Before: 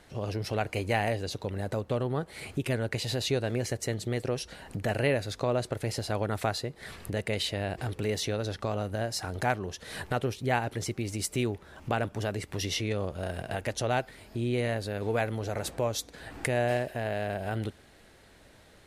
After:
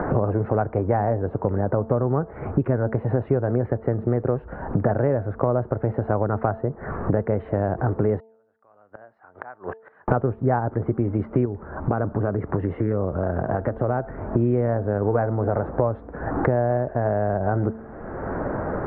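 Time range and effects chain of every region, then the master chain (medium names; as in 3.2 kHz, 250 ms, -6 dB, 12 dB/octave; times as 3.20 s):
8.20–10.08 s: differentiator + inverted gate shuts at -41 dBFS, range -31 dB
11.45–14.27 s: dynamic bell 920 Hz, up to -3 dB, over -40 dBFS, Q 1 + compression 2:1, threshold -38 dBFS + loudspeaker Doppler distortion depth 0.17 ms
whole clip: steep low-pass 1.4 kHz 36 dB/octave; de-hum 222.8 Hz, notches 4; three bands compressed up and down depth 100%; trim +8.5 dB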